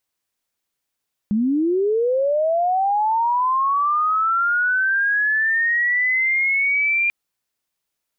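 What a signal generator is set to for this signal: chirp linear 200 Hz -> 2400 Hz -16 dBFS -> -16 dBFS 5.79 s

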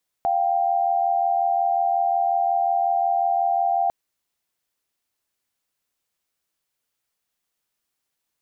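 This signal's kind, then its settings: chord F5/G5 sine, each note -21 dBFS 3.65 s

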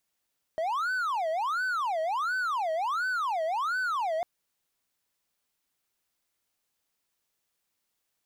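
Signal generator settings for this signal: siren wail 633–1520 Hz 1.4/s triangle -24.5 dBFS 3.65 s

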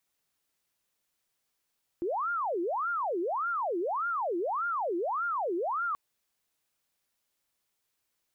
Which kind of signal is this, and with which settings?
siren wail 337–1410 Hz 1.7/s sine -28 dBFS 3.93 s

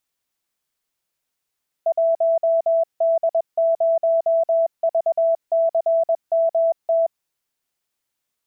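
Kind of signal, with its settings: Morse "1D0VCMT" 21 wpm 661 Hz -14.5 dBFS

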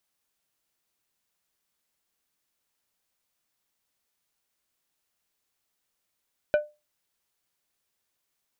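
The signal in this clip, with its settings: glass hit plate, lowest mode 598 Hz, decay 0.25 s, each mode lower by 9 dB, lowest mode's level -15 dB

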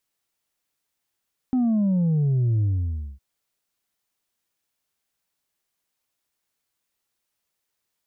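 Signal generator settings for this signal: sub drop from 260 Hz, over 1.66 s, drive 2.5 dB, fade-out 0.57 s, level -18.5 dB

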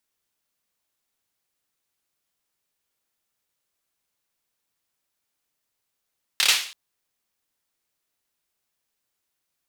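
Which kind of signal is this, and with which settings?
hand clap length 0.33 s, apart 28 ms, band 3200 Hz, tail 0.47 s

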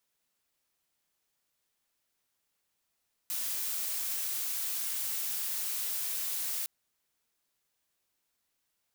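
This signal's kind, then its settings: noise blue, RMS -34 dBFS 3.36 s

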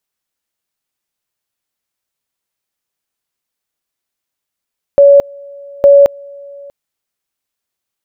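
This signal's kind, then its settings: two-level tone 564 Hz -1.5 dBFS, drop 27.5 dB, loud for 0.22 s, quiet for 0.64 s, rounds 2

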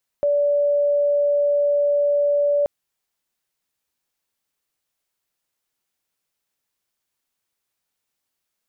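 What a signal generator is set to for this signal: tone sine 578 Hz -15.5 dBFS 2.43 s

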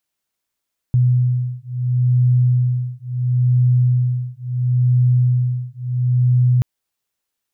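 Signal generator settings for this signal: beating tones 124 Hz, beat 0.73 Hz, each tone -16.5 dBFS 5.68 s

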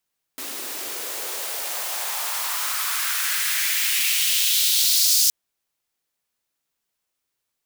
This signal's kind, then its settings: swept filtered noise white, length 4.92 s highpass, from 270 Hz, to 5200 Hz, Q 2.2, exponential, gain ramp +14 dB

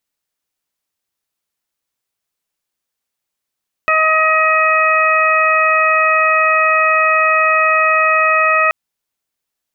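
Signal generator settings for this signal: steady additive tone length 4.83 s, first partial 632 Hz, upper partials 5/1/2 dB, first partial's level -18 dB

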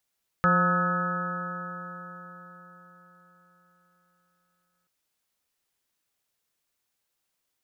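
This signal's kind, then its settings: stretched partials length 4.43 s, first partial 175 Hz, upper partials -15/-5/-14.5/-12.5/-17/3/-5/-6 dB, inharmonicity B 0.0019, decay 4.48 s, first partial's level -23 dB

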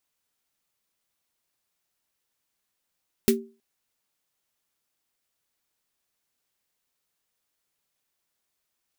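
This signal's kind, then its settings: snare drum length 0.32 s, tones 230 Hz, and 390 Hz, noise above 1500 Hz, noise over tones -5 dB, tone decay 0.33 s, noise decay 0.12 s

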